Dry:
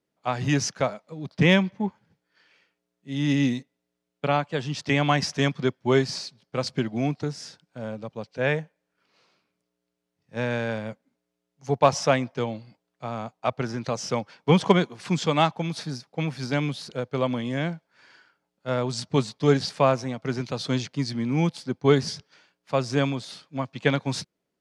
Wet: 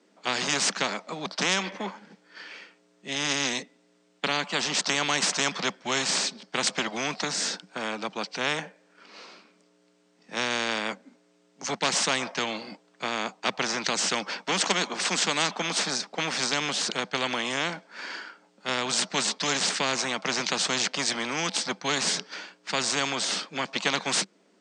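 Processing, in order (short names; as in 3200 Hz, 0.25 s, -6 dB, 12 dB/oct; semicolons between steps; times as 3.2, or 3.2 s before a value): Chebyshev band-pass 190–8500 Hz, order 5; spectral compressor 4:1; gain -4 dB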